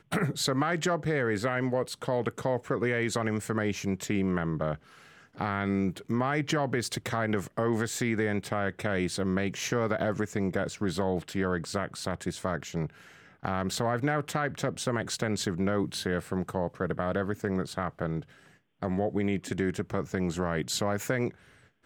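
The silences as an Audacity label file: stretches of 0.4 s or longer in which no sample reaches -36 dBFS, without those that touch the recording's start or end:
4.750000	5.380000	silence
12.870000	13.450000	silence
18.210000	18.830000	silence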